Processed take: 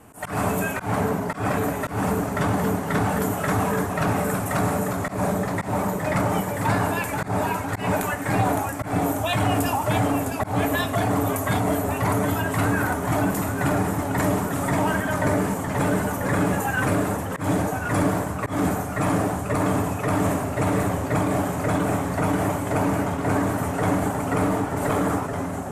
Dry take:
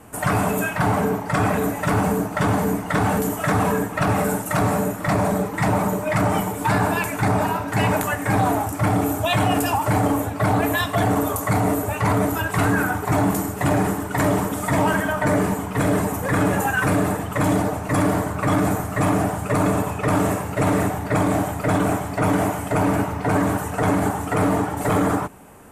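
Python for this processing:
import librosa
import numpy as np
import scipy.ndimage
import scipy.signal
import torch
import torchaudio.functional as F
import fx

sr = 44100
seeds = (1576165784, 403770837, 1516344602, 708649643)

y = fx.echo_pitch(x, sr, ms=86, semitones=-1, count=3, db_per_echo=-6.0)
y = fx.auto_swell(y, sr, attack_ms=139.0)
y = F.gain(torch.from_numpy(y), -3.5).numpy()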